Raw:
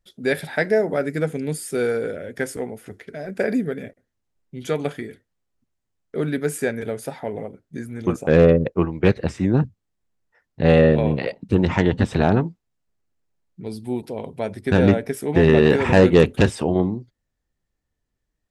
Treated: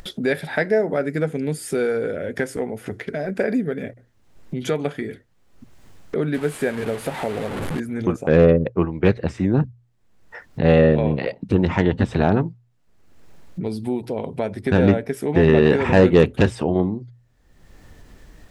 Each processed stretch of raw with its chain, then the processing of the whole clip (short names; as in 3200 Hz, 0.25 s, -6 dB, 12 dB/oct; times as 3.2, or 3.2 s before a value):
6.34–7.8 delta modulation 64 kbps, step -28 dBFS + bell 5700 Hz -9 dB 0.82 oct
whole clip: high shelf 5100 Hz -7.5 dB; notches 60/120 Hz; upward compressor, threshold -18 dBFS